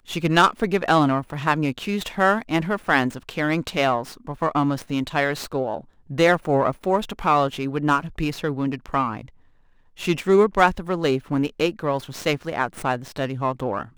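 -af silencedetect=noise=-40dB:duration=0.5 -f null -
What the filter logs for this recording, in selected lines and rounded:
silence_start: 9.29
silence_end: 9.97 | silence_duration: 0.68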